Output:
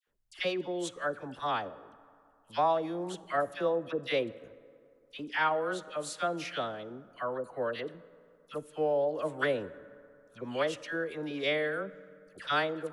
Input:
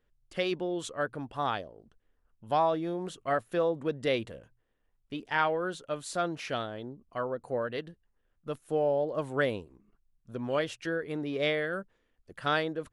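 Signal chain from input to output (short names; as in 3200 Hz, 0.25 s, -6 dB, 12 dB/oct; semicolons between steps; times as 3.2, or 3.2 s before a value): 3.81–4.36 gate -36 dBFS, range -19 dB; low shelf 210 Hz -9 dB; dispersion lows, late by 76 ms, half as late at 1300 Hz; reverb RT60 2.5 s, pre-delay 3 ms, DRR 17 dB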